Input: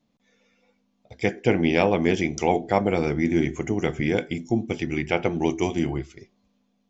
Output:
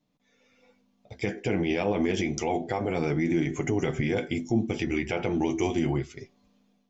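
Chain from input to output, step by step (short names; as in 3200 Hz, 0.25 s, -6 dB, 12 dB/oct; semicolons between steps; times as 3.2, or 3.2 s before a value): AGC gain up to 8 dB; limiter -12 dBFS, peak gain reduction 10 dB; flange 0.3 Hz, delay 6.4 ms, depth 3.6 ms, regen -37%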